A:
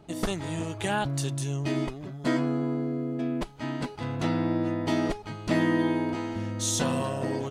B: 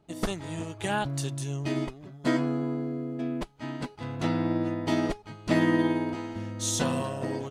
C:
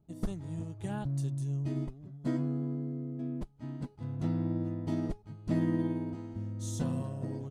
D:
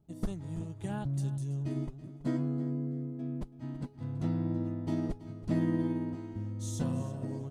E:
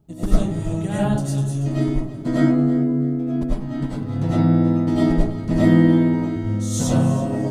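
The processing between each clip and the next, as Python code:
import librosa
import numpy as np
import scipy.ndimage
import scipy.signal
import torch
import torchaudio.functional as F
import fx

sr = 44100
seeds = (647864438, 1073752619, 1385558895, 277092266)

y1 = fx.upward_expand(x, sr, threshold_db=-47.0, expansion=1.5)
y1 = F.gain(torch.from_numpy(y1), 1.5).numpy()
y2 = fx.curve_eq(y1, sr, hz=(150.0, 400.0, 2600.0, 9600.0), db=(0, -10, -20, -13))
y3 = fx.echo_feedback(y2, sr, ms=329, feedback_pct=25, wet_db=-15.5)
y4 = fx.rev_freeverb(y3, sr, rt60_s=0.46, hf_ratio=0.5, predelay_ms=60, drr_db=-8.5)
y4 = F.gain(torch.from_numpy(y4), 8.5).numpy()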